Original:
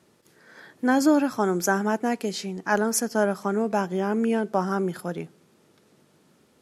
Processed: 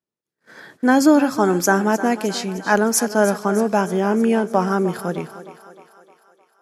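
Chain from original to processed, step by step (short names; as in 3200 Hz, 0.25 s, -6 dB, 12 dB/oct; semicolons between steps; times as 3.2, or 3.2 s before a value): gate -52 dBFS, range -36 dB; on a send: thinning echo 0.307 s, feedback 58%, high-pass 300 Hz, level -13 dB; on the sum: gain +6 dB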